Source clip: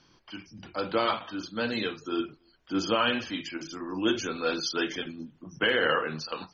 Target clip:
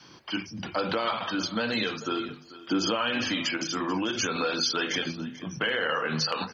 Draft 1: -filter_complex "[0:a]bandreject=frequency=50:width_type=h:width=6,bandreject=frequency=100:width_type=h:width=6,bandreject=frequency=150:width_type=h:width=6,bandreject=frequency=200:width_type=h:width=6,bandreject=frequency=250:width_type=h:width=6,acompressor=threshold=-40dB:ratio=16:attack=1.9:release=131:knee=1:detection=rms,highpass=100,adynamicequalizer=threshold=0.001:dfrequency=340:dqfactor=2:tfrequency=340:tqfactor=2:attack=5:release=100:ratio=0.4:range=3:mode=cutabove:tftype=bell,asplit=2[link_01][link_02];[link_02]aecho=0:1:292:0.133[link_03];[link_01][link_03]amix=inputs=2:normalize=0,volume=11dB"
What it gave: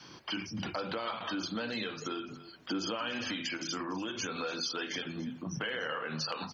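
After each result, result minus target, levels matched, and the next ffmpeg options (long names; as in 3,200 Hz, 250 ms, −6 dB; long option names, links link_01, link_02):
downward compressor: peak gain reduction +8.5 dB; echo 147 ms early
-filter_complex "[0:a]bandreject=frequency=50:width_type=h:width=6,bandreject=frequency=100:width_type=h:width=6,bandreject=frequency=150:width_type=h:width=6,bandreject=frequency=200:width_type=h:width=6,bandreject=frequency=250:width_type=h:width=6,acompressor=threshold=-31dB:ratio=16:attack=1.9:release=131:knee=1:detection=rms,highpass=100,adynamicequalizer=threshold=0.001:dfrequency=340:dqfactor=2:tfrequency=340:tqfactor=2:attack=5:release=100:ratio=0.4:range=3:mode=cutabove:tftype=bell,asplit=2[link_01][link_02];[link_02]aecho=0:1:292:0.133[link_03];[link_01][link_03]amix=inputs=2:normalize=0,volume=11dB"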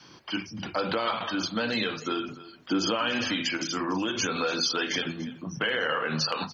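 echo 147 ms early
-filter_complex "[0:a]bandreject=frequency=50:width_type=h:width=6,bandreject=frequency=100:width_type=h:width=6,bandreject=frequency=150:width_type=h:width=6,bandreject=frequency=200:width_type=h:width=6,bandreject=frequency=250:width_type=h:width=6,acompressor=threshold=-31dB:ratio=16:attack=1.9:release=131:knee=1:detection=rms,highpass=100,adynamicequalizer=threshold=0.001:dfrequency=340:dqfactor=2:tfrequency=340:tqfactor=2:attack=5:release=100:ratio=0.4:range=3:mode=cutabove:tftype=bell,asplit=2[link_01][link_02];[link_02]aecho=0:1:439:0.133[link_03];[link_01][link_03]amix=inputs=2:normalize=0,volume=11dB"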